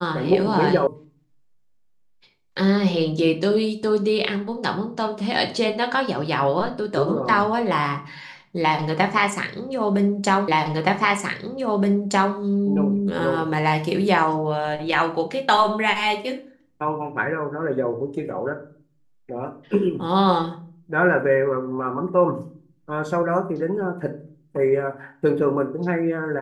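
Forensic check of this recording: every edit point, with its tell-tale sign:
0.87 s: sound stops dead
10.48 s: repeat of the last 1.87 s

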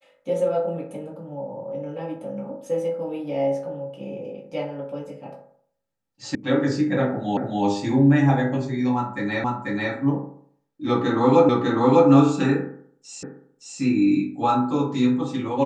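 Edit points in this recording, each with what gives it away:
6.35 s: sound stops dead
7.37 s: repeat of the last 0.27 s
9.44 s: repeat of the last 0.49 s
11.49 s: repeat of the last 0.6 s
13.23 s: repeat of the last 0.57 s

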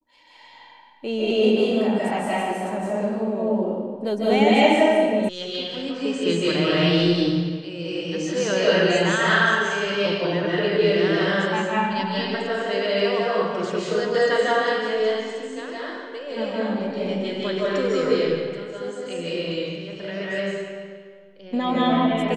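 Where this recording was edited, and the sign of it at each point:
5.29 s: sound stops dead

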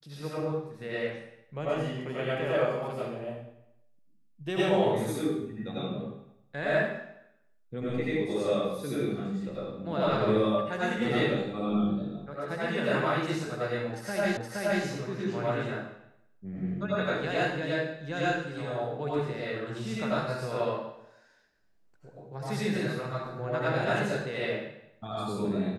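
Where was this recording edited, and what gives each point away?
14.37 s: repeat of the last 0.47 s

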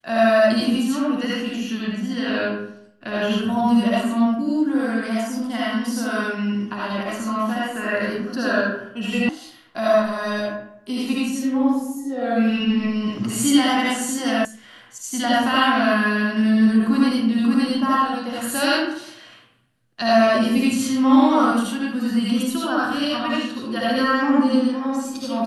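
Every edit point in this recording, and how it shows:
9.29 s: sound stops dead
14.45 s: sound stops dead

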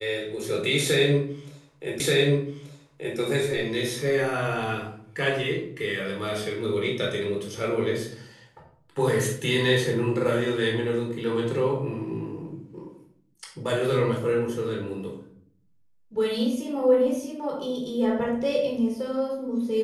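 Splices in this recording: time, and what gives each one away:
2.00 s: repeat of the last 1.18 s

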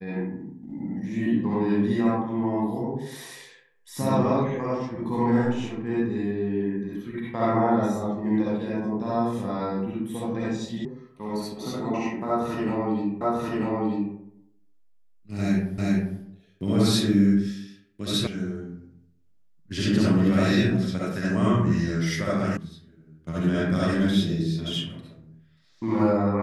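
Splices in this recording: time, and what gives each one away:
10.85 s: sound stops dead
13.21 s: repeat of the last 0.94 s
15.78 s: repeat of the last 0.4 s
18.27 s: sound stops dead
22.57 s: sound stops dead

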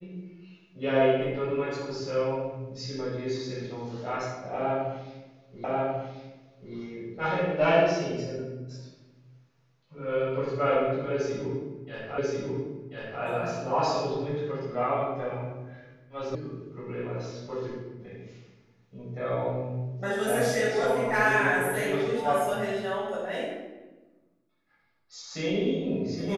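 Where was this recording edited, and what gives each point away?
5.64 s: repeat of the last 1.09 s
12.18 s: repeat of the last 1.04 s
16.35 s: sound stops dead

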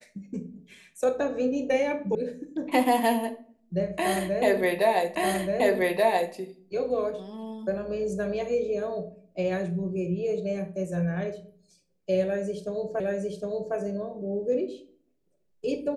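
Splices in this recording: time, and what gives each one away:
2.15 s: sound stops dead
5.15 s: repeat of the last 1.18 s
13.00 s: repeat of the last 0.76 s

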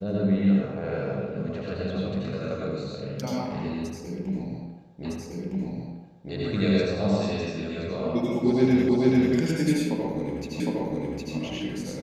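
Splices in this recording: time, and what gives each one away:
5.05 s: repeat of the last 1.26 s
8.89 s: repeat of the last 0.44 s
10.60 s: repeat of the last 0.76 s

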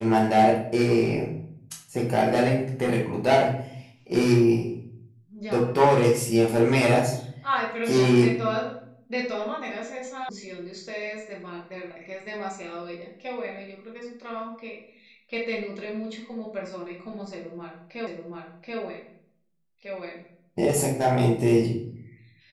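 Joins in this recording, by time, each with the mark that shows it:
10.29 s: sound stops dead
18.07 s: repeat of the last 0.73 s

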